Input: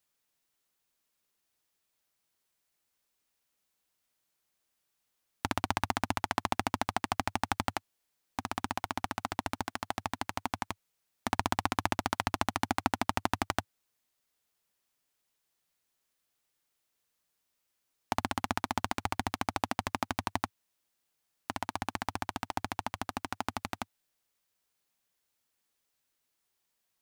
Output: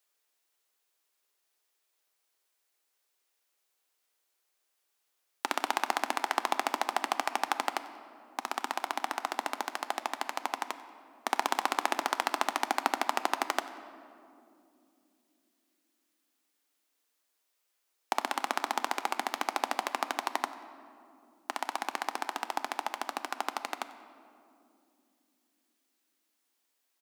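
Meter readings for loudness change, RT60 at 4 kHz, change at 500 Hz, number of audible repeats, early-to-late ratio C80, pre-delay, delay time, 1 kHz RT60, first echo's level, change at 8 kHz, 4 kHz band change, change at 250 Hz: +1.5 dB, 1.4 s, +2.0 dB, 1, 13.0 dB, 3 ms, 93 ms, 2.2 s, −20.5 dB, +2.0 dB, +2.0 dB, −6.0 dB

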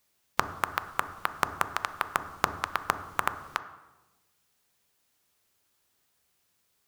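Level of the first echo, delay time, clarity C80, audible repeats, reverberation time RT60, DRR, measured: no echo audible, no echo audible, 14.5 dB, no echo audible, 1.1 s, 10.0 dB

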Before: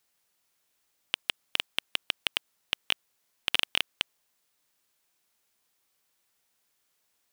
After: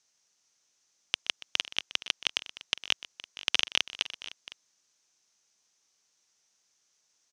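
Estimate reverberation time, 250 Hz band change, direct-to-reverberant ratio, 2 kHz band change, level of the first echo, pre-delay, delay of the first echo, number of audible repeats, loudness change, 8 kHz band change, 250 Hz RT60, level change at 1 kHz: no reverb audible, −2.0 dB, no reverb audible, −0.5 dB, −17.5 dB, no reverb audible, 125 ms, 3, +0.5 dB, +5.0 dB, no reverb audible, −1.5 dB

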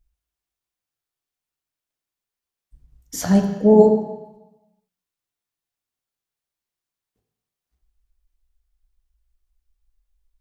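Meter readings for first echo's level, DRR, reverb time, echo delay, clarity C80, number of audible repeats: no echo audible, 3.0 dB, 1.0 s, no echo audible, 8.0 dB, no echo audible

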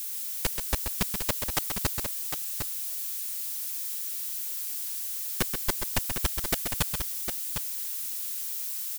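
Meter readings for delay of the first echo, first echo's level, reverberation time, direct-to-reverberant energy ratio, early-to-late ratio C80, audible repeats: 131 ms, −7.0 dB, no reverb audible, no reverb audible, no reverb audible, 2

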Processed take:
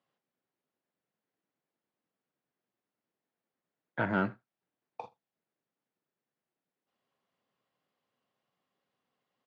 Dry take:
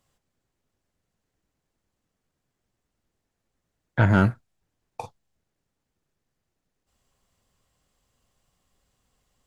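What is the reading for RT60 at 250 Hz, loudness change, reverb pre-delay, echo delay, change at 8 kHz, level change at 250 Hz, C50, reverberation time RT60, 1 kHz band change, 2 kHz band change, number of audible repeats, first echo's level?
no reverb audible, −11.0 dB, no reverb audible, 80 ms, can't be measured, −10.5 dB, no reverb audible, no reverb audible, −7.0 dB, −7.5 dB, 1, −24.0 dB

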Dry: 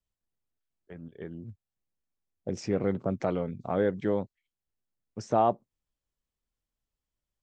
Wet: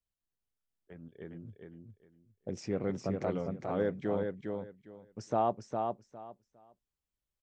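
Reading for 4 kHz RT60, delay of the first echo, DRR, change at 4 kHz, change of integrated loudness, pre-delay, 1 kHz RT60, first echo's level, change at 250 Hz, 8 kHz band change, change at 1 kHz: no reverb audible, 407 ms, no reverb audible, −4.0 dB, −5.5 dB, no reverb audible, no reverb audible, −4.5 dB, −4.0 dB, −4.0 dB, −4.0 dB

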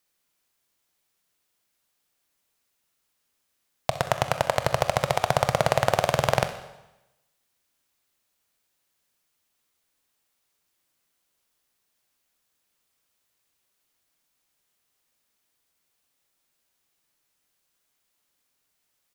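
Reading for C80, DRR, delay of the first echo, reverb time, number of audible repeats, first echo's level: 13.0 dB, 8.5 dB, 63 ms, 0.95 s, 1, −15.5 dB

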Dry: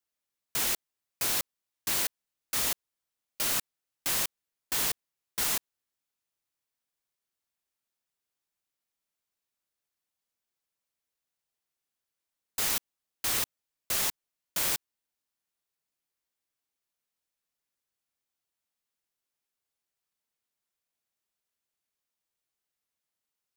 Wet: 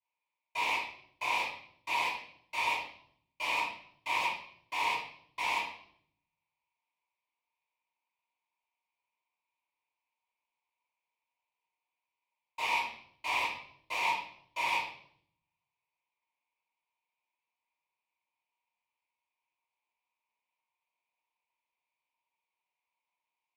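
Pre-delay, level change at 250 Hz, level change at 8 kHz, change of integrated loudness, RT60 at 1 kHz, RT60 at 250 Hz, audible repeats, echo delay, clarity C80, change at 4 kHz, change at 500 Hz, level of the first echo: 3 ms, −7.5 dB, −18.5 dB, −4.0 dB, 0.55 s, 0.90 s, no echo audible, no echo audible, 6.5 dB, −4.0 dB, −1.5 dB, no echo audible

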